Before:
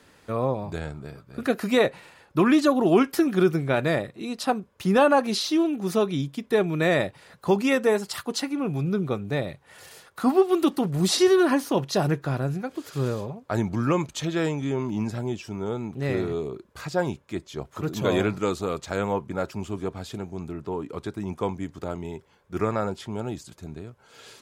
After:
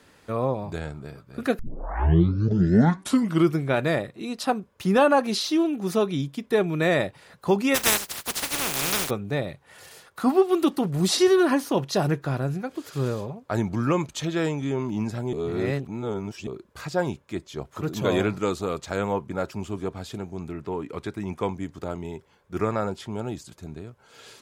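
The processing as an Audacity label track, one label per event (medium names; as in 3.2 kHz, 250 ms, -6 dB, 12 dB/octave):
1.590000	1.590000	tape start 2.02 s
7.740000	9.090000	spectral contrast reduction exponent 0.19
15.330000	16.470000	reverse
20.460000	21.470000	peaking EQ 2.1 kHz +5.5 dB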